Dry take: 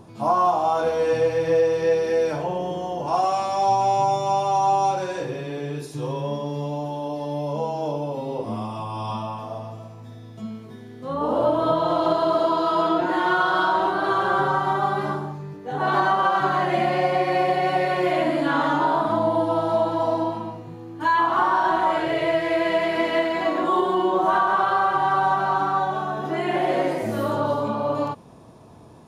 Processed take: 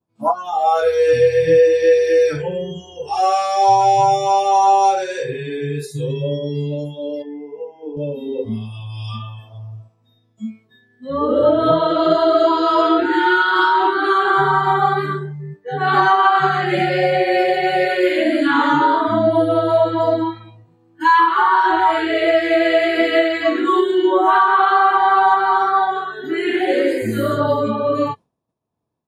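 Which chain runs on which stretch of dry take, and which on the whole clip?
0:07.22–0:07.97: high-frequency loss of the air 100 metres + phaser with its sweep stopped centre 830 Hz, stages 8
whole clip: downward expander −36 dBFS; noise reduction from a noise print of the clip's start 24 dB; level +7.5 dB

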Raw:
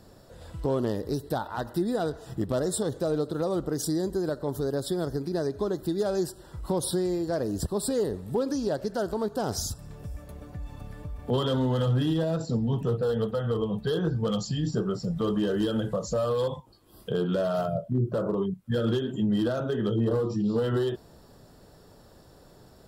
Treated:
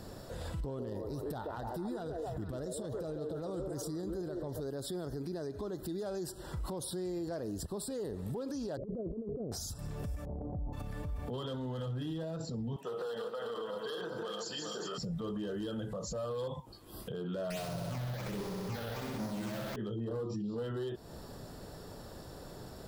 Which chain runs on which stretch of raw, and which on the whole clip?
0:00.60–0:04.60: low-shelf EQ 140 Hz +9.5 dB + echo through a band-pass that steps 138 ms, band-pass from 460 Hz, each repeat 0.7 octaves, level −1.5 dB
0:08.77–0:09.52: Butterworth low-pass 560 Hz 48 dB per octave + compressor whose output falls as the input rises −36 dBFS, ratio −0.5
0:10.25–0:10.73: Chebyshev low-pass filter 820 Hz, order 4 + transient designer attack −5 dB, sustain +7 dB
0:12.76–0:14.98: feedback delay that plays each chunk backwards 197 ms, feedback 62%, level −5 dB + high-pass filter 600 Hz
0:17.50–0:19.76: each half-wave held at its own peak + all-pass phaser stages 8, 1.3 Hz, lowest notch 270–2,900 Hz + flutter between parallel walls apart 11 metres, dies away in 1.4 s
whole clip: downward compressor 4 to 1, threshold −38 dBFS; brickwall limiter −37 dBFS; level +5.5 dB

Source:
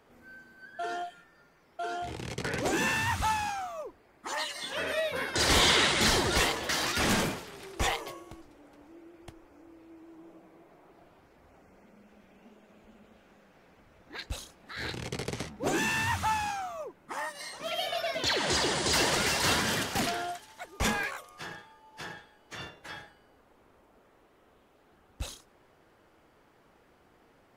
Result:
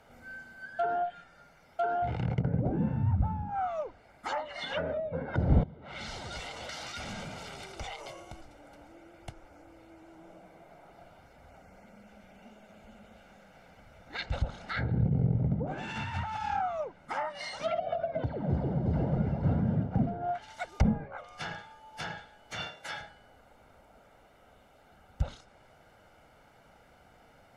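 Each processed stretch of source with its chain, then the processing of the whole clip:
0:05.63–0:08.37: notch filter 1,700 Hz + downward compressor 8 to 1, threshold −41 dBFS
0:14.20–0:16.61: single-tap delay 114 ms −3.5 dB + compressor whose output falls as the input rises −36 dBFS
0:22.60–0:23.01: high-pass filter 250 Hz 6 dB per octave + high-shelf EQ 5,200 Hz +6 dB + upward compression, threshold −55 dBFS
whole clip: dynamic equaliser 150 Hz, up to +7 dB, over −48 dBFS, Q 1; treble cut that deepens with the level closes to 370 Hz, closed at −27.5 dBFS; comb filter 1.4 ms, depth 57%; level +2.5 dB

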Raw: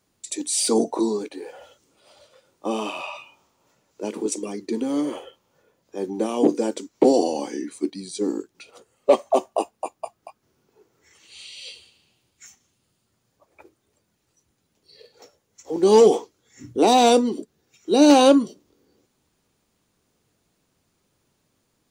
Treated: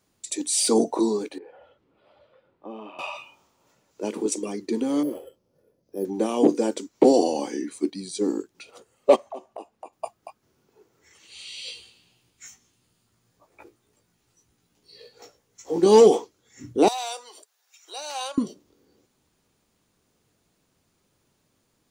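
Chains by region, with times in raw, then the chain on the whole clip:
0:01.38–0:02.99: downward compressor 1.5 to 1, threshold −54 dBFS + high-frequency loss of the air 470 metres
0:05.03–0:06.05: flat-topped bell 1,800 Hz −13.5 dB 2.7 octaves + bad sample-rate conversion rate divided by 4×, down filtered, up hold
0:09.16–0:09.93: high-shelf EQ 4,800 Hz −9.5 dB + mains-hum notches 60/120 Hz + downward compressor 2.5 to 1, threshold −41 dBFS
0:11.45–0:15.86: parametric band 580 Hz −4.5 dB 0.27 octaves + double-tracking delay 17 ms −2.5 dB
0:16.88–0:18.38: high-shelf EQ 5,000 Hz +6 dB + downward compressor 4 to 1, threshold −25 dBFS + inverse Chebyshev high-pass filter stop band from 160 Hz, stop band 70 dB
whole clip: no processing

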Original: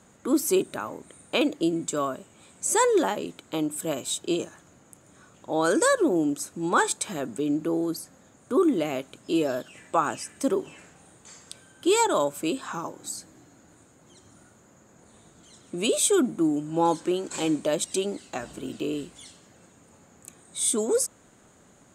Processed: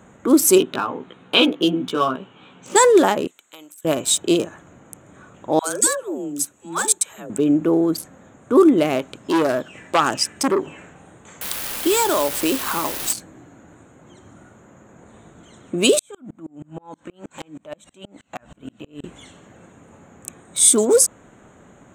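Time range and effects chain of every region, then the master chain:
0:00.58–0:02.76: loudspeaker in its box 160–4,600 Hz, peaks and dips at 320 Hz −4 dB, 600 Hz −9 dB, 2,000 Hz −6 dB, 3,100 Hz +7 dB + double-tracking delay 16 ms −2 dB
0:03.27–0:03.85: first difference + downward compressor 5 to 1, threshold −40 dBFS
0:05.59–0:07.30: first-order pre-emphasis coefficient 0.8 + all-pass dispersion lows, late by 106 ms, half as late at 490 Hz
0:09.00–0:10.66: parametric band 5,000 Hz +12 dB 0.29 octaves + saturating transformer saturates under 1,600 Hz
0:11.41–0:13.13: high-pass filter 210 Hz + downward compressor 5 to 1, threshold −24 dBFS + bit-depth reduction 6 bits, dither triangular
0:15.99–0:19.04: downward compressor 16 to 1, threshold −29 dBFS + parametric band 380 Hz −10.5 dB 0.6 octaves + tremolo with a ramp in dB swelling 6.3 Hz, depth 33 dB
whole clip: adaptive Wiener filter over 9 samples; high-shelf EQ 4,600 Hz +5 dB; boost into a limiter +10 dB; level −1 dB

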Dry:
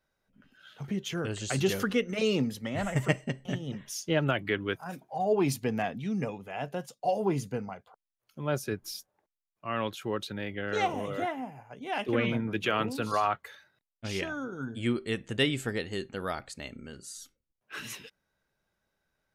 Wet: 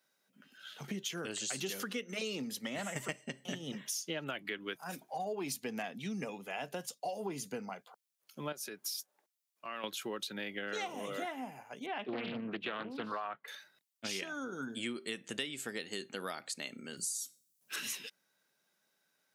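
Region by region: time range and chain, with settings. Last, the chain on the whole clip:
0:08.52–0:09.84: downward compressor 3 to 1, threshold −38 dBFS + low-shelf EQ 180 Hz −11.5 dB
0:11.86–0:13.48: high-frequency loss of the air 450 metres + highs frequency-modulated by the lows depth 0.46 ms
0:16.97–0:17.76: bass and treble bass +14 dB, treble +15 dB + tuned comb filter 140 Hz, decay 0.33 s, mix 40%
whole clip: high-pass filter 170 Hz 24 dB per octave; high-shelf EQ 2,400 Hz +11.5 dB; downward compressor 6 to 1, threshold −34 dBFS; level −2 dB

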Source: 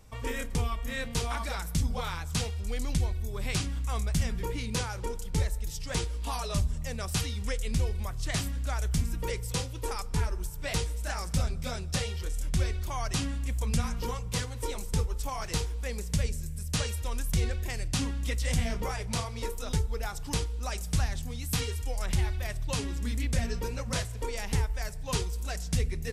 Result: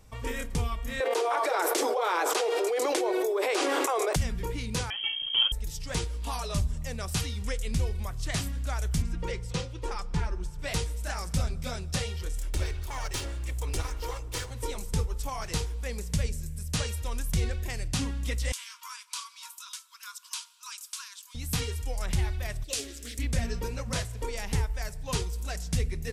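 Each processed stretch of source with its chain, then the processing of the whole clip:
0:01.00–0:04.16: Butterworth high-pass 340 Hz 72 dB per octave + tilt shelving filter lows +9.5 dB, about 1,400 Hz + envelope flattener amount 100%
0:04.90–0:05.52: voice inversion scrambler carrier 3,200 Hz + comb filter 7.1 ms, depth 35%
0:09.02–0:10.59: high-frequency loss of the air 81 metres + comb filter 5.7 ms, depth 38%
0:12.38–0:14.51: lower of the sound and its delayed copy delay 2.2 ms + parametric band 190 Hz −14 dB 0.83 octaves
0:18.52–0:21.35: linear-phase brick-wall high-pass 940 Hz + parametric band 1,900 Hz −12.5 dB 0.49 octaves + notch filter 1,200 Hz, Q 14
0:22.64–0:23.19: bass and treble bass −12 dB, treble +7 dB + phaser with its sweep stopped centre 390 Hz, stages 4 + highs frequency-modulated by the lows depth 0.24 ms
whole clip: no processing

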